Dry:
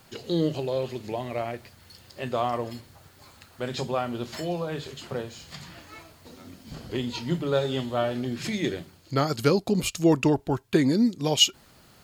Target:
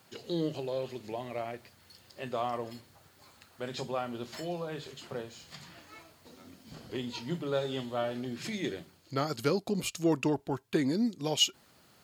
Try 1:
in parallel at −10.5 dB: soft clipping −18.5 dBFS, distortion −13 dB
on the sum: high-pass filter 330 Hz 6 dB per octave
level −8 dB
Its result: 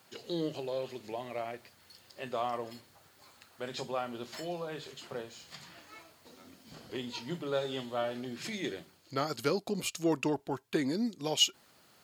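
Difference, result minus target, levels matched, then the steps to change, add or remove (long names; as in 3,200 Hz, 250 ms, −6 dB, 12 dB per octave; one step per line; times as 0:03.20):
125 Hz band −3.5 dB
change: high-pass filter 140 Hz 6 dB per octave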